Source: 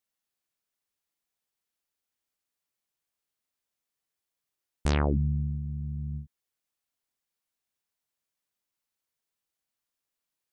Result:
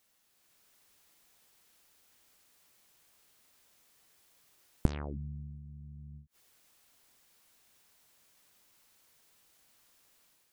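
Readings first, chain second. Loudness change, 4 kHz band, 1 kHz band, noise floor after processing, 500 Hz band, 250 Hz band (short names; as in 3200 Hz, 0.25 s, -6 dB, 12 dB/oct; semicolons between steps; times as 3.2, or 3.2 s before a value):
-10.0 dB, -12.0 dB, -12.0 dB, -71 dBFS, -10.0 dB, -8.0 dB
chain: flipped gate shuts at -33 dBFS, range -34 dB; AGC gain up to 6 dB; gain +14 dB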